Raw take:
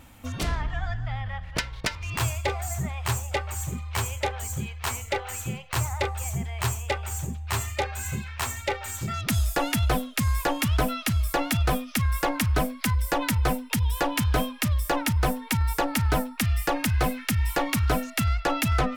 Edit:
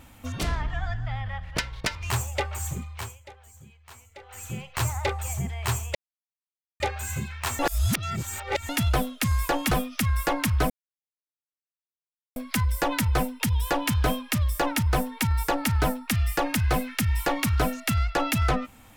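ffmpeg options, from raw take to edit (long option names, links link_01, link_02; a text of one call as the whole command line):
ffmpeg -i in.wav -filter_complex "[0:a]asplit=10[link_01][link_02][link_03][link_04][link_05][link_06][link_07][link_08][link_09][link_10];[link_01]atrim=end=2.102[link_11];[link_02]atrim=start=3.058:end=4.14,asetpts=PTS-STARTPTS,afade=type=out:start_time=0.612:duration=0.47:silence=0.112202[link_12];[link_03]atrim=start=4.14:end=5.17,asetpts=PTS-STARTPTS,volume=-19dB[link_13];[link_04]atrim=start=5.17:end=6.91,asetpts=PTS-STARTPTS,afade=type=in:duration=0.47:silence=0.112202,afade=type=out:start_time=1.736:duration=0.004:curve=hsin[link_14];[link_05]atrim=start=6.91:end=7.76,asetpts=PTS-STARTPTS,volume=0[link_15];[link_06]atrim=start=7.76:end=8.552,asetpts=PTS-STARTPTS,afade=type=in:duration=0.004:curve=hsin[link_16];[link_07]atrim=start=8.548:end=9.652,asetpts=PTS-STARTPTS,areverse[link_17];[link_08]atrim=start=9.648:end=10.672[link_18];[link_09]atrim=start=11.668:end=12.66,asetpts=PTS-STARTPTS,afade=type=out:start_time=0.988:duration=0.004:curve=hsin,apad=pad_dur=1.66[link_19];[link_10]atrim=start=12.66,asetpts=PTS-STARTPTS,afade=type=in:duration=0.004:curve=hsin[link_20];[link_12][link_13][link_14][link_15][link_16]concat=n=5:v=0:a=1[link_21];[link_11][link_21]acrossfade=duration=0.004:curve1=hsin:curve2=hsin[link_22];[link_22][link_17]acrossfade=duration=0.004:curve1=hsin:curve2=hsin[link_23];[link_23][link_18]acrossfade=duration=0.004:curve1=hsin:curve2=hsin[link_24];[link_19][link_20]concat=n=2:v=0:a=1[link_25];[link_24][link_25]acrossfade=duration=0.004:curve1=hsin:curve2=hsin" out.wav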